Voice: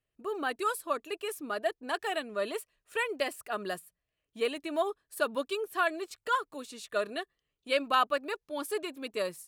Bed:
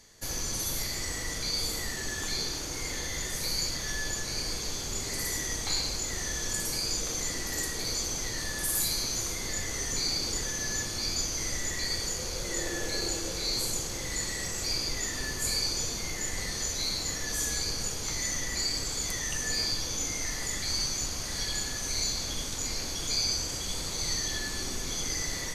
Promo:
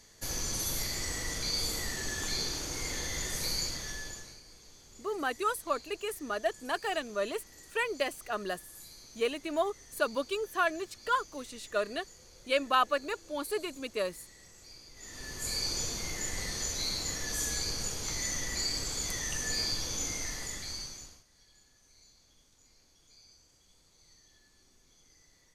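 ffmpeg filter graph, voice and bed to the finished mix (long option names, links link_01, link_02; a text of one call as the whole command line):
ffmpeg -i stem1.wav -i stem2.wav -filter_complex "[0:a]adelay=4800,volume=0dB[link_01];[1:a]volume=17.5dB,afade=type=out:start_time=3.46:duration=0.94:silence=0.1,afade=type=in:start_time=14.94:duration=0.8:silence=0.112202,afade=type=out:start_time=20.08:duration=1.16:silence=0.0375837[link_02];[link_01][link_02]amix=inputs=2:normalize=0" out.wav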